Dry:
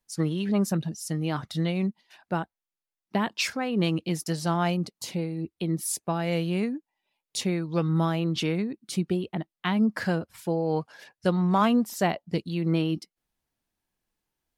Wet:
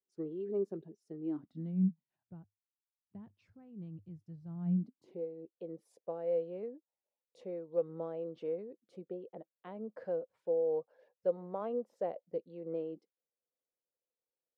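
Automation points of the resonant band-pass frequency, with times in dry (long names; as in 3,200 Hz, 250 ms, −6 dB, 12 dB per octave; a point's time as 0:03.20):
resonant band-pass, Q 7.5
0:01.15 400 Hz
0:02.36 100 Hz
0:04.44 100 Hz
0:05.25 510 Hz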